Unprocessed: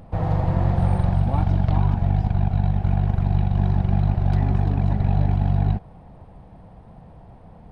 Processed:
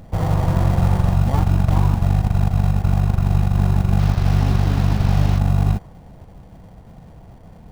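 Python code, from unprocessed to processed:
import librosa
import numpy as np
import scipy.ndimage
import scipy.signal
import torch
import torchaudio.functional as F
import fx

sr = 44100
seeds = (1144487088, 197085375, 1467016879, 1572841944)

p1 = fx.delta_mod(x, sr, bps=32000, step_db=-28.0, at=(3.99, 5.39))
p2 = fx.dynamic_eq(p1, sr, hz=1100.0, q=2.0, threshold_db=-49.0, ratio=4.0, max_db=6)
p3 = fx.sample_hold(p2, sr, seeds[0], rate_hz=1300.0, jitter_pct=0)
y = p2 + (p3 * librosa.db_to_amplitude(-7.0))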